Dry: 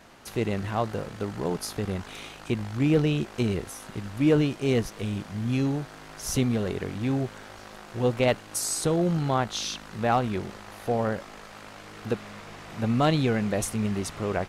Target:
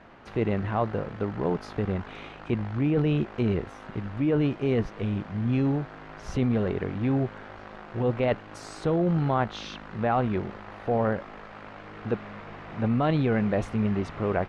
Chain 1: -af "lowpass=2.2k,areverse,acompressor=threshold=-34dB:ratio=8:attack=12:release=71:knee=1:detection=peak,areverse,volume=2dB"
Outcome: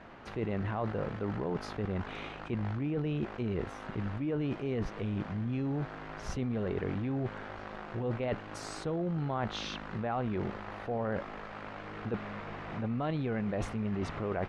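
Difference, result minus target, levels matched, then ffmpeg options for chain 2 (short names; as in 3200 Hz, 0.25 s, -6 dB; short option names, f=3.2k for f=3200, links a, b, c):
compressor: peak gain reduction +9 dB
-af "lowpass=2.2k,areverse,acompressor=threshold=-23.5dB:ratio=8:attack=12:release=71:knee=1:detection=peak,areverse,volume=2dB"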